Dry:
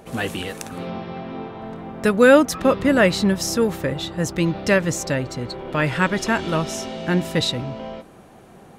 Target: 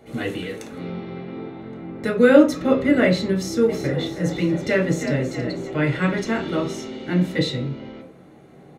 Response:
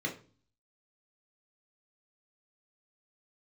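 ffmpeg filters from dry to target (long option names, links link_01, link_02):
-filter_complex "[0:a]asplit=3[link_01][link_02][link_03];[link_01]afade=type=out:start_time=3.68:duration=0.02[link_04];[link_02]asplit=7[link_05][link_06][link_07][link_08][link_09][link_10][link_11];[link_06]adelay=322,afreqshift=43,volume=-9.5dB[link_12];[link_07]adelay=644,afreqshift=86,volume=-15.5dB[link_13];[link_08]adelay=966,afreqshift=129,volume=-21.5dB[link_14];[link_09]adelay=1288,afreqshift=172,volume=-27.6dB[link_15];[link_10]adelay=1610,afreqshift=215,volume=-33.6dB[link_16];[link_11]adelay=1932,afreqshift=258,volume=-39.6dB[link_17];[link_05][link_12][link_13][link_14][link_15][link_16][link_17]amix=inputs=7:normalize=0,afade=type=in:start_time=3.68:duration=0.02,afade=type=out:start_time=5.68:duration=0.02[link_18];[link_03]afade=type=in:start_time=5.68:duration=0.02[link_19];[link_04][link_18][link_19]amix=inputs=3:normalize=0[link_20];[1:a]atrim=start_sample=2205[link_21];[link_20][link_21]afir=irnorm=-1:irlink=0,volume=-7.5dB"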